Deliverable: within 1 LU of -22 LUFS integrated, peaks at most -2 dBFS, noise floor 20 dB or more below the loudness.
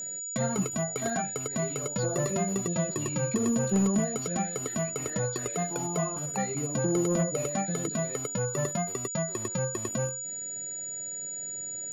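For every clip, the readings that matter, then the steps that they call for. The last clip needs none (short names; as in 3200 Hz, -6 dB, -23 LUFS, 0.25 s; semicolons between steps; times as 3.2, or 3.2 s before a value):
steady tone 6900 Hz; tone level -34 dBFS; loudness -29.5 LUFS; peak -18.0 dBFS; loudness target -22.0 LUFS
-> notch 6900 Hz, Q 30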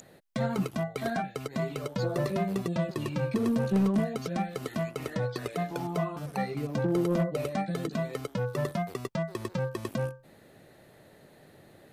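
steady tone none; loudness -31.5 LUFS; peak -19.0 dBFS; loudness target -22.0 LUFS
-> gain +9.5 dB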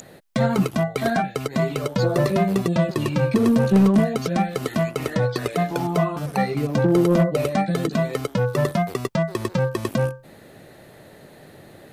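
loudness -22.0 LUFS; peak -9.5 dBFS; noise floor -47 dBFS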